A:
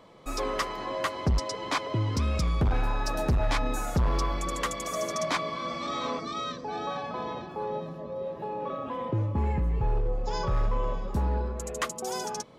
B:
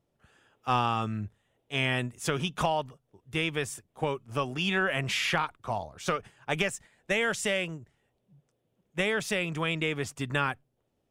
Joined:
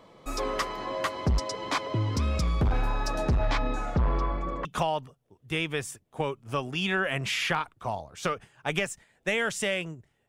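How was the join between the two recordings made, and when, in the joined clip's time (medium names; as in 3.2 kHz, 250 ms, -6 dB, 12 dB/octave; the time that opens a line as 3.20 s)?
A
3.07–4.65 s: low-pass 10 kHz -> 1.2 kHz
4.65 s: go over to B from 2.48 s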